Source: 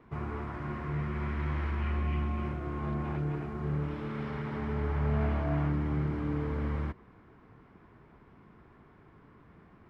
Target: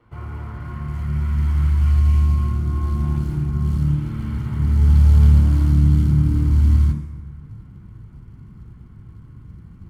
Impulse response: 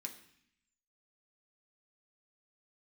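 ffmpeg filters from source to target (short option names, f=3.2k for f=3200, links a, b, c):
-filter_complex "[0:a]asubboost=boost=9.5:cutoff=190,acrusher=bits=9:mode=log:mix=0:aa=0.000001[a];[1:a]atrim=start_sample=2205,asetrate=25137,aresample=44100[b];[a][b]afir=irnorm=-1:irlink=0"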